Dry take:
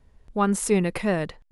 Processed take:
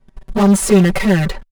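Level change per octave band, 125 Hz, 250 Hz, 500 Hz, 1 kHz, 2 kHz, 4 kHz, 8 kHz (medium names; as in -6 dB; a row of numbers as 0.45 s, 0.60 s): +13.5 dB, +12.0 dB, +8.5 dB, +5.0 dB, +9.5 dB, +12.0 dB, +9.0 dB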